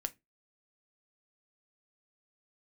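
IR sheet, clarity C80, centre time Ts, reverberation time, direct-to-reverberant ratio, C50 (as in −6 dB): 32.5 dB, 3 ms, non-exponential decay, 8.5 dB, 23.5 dB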